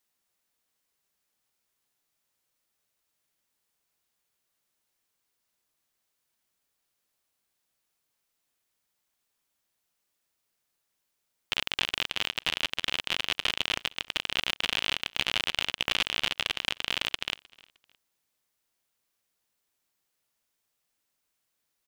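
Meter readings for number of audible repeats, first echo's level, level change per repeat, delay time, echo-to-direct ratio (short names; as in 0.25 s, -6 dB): 2, -24.0 dB, -10.0 dB, 0.308 s, -23.5 dB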